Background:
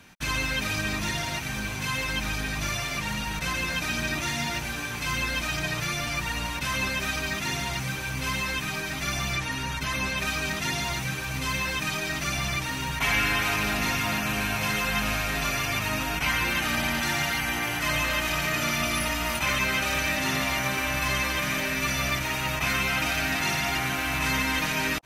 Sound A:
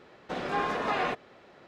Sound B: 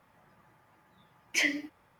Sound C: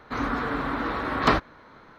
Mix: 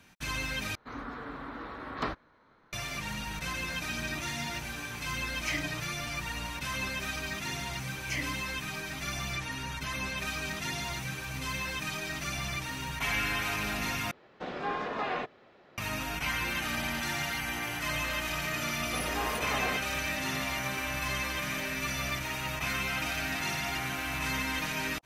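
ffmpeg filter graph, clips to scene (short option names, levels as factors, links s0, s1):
-filter_complex "[2:a]asplit=2[s0][s1];[1:a]asplit=2[s2][s3];[0:a]volume=0.473[s4];[s2]lowpass=5700[s5];[s4]asplit=3[s6][s7][s8];[s6]atrim=end=0.754[s9];[3:a]atrim=end=1.98,asetpts=PTS-STARTPTS,volume=0.224[s10];[s7]atrim=start=2.726:end=14.114[s11];[s5]atrim=end=1.67,asetpts=PTS-STARTPTS,volume=0.631[s12];[s8]atrim=start=15.776[s13];[s0]atrim=end=1.99,asetpts=PTS-STARTPTS,volume=0.422,afade=t=in:d=0.004:c=hsin,afade=t=out:st=1.986:d=0.004:c=hsin,adelay=4100[s14];[s1]atrim=end=1.99,asetpts=PTS-STARTPTS,volume=0.398,afade=t=in:d=0.004:c=hsin,afade=t=out:st=1.986:d=0.004:c=hsin,adelay=297234S[s15];[s3]atrim=end=1.67,asetpts=PTS-STARTPTS,volume=0.531,afade=t=in:d=0.004:c=hsin,afade=t=out:st=1.666:d=0.004:c=hsin,adelay=18630[s16];[s9][s10]acrossfade=d=0.004:c1=hsin:c2=hsin[s17];[s17][s11]acrossfade=d=0.004:c1=hsin:c2=hsin[s18];[s18][s12]acrossfade=d=0.004:c1=hsin:c2=hsin[s19];[s19][s13]acrossfade=d=0.004:c1=hsin:c2=hsin[s20];[s20][s14][s15][s16]amix=inputs=4:normalize=0"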